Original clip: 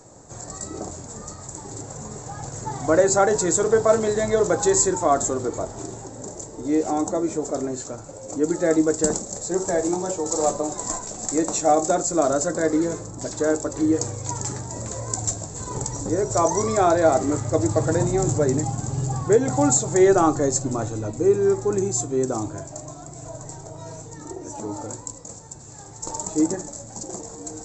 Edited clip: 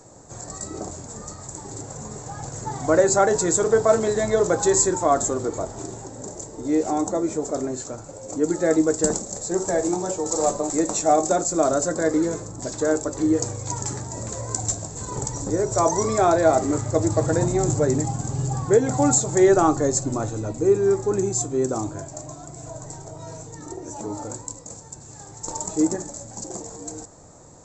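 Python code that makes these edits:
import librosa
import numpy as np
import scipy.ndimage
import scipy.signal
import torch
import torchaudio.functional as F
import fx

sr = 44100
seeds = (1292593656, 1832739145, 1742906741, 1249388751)

y = fx.edit(x, sr, fx.cut(start_s=10.7, length_s=0.59), tone=tone)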